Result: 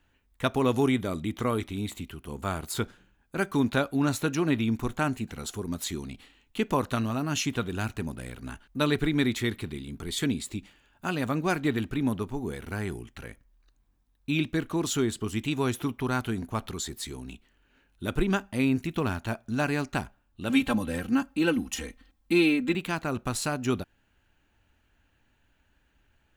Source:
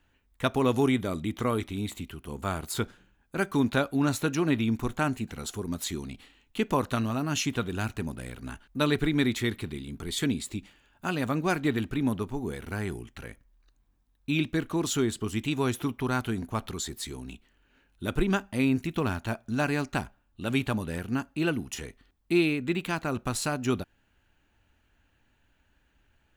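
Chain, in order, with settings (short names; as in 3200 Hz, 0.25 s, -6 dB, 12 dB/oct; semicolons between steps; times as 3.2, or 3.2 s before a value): 20.49–22.75 comb 3.8 ms, depth 97%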